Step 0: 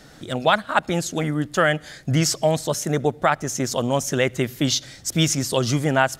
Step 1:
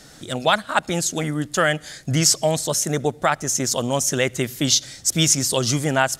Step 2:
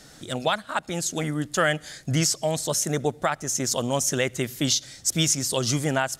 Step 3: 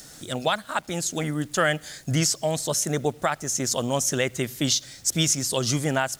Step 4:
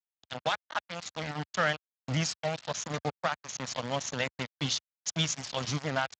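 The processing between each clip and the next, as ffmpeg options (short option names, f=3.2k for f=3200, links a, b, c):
-af "equalizer=f=8.4k:t=o:w=1.9:g=9,volume=-1dB"
-af "alimiter=limit=-7.5dB:level=0:latency=1:release=436,volume=-3dB"
-filter_complex "[0:a]acrossover=split=6000[a][b];[b]acompressor=mode=upward:threshold=-40dB:ratio=2.5[c];[a][c]amix=inputs=2:normalize=0,acrusher=bits=8:mix=0:aa=0.000001"
-af "aeval=exprs='val(0)*gte(abs(val(0)),0.0631)':c=same,equalizer=f=360:w=2.9:g=-14.5,volume=-4.5dB" -ar 16000 -c:a libspeex -b:a 21k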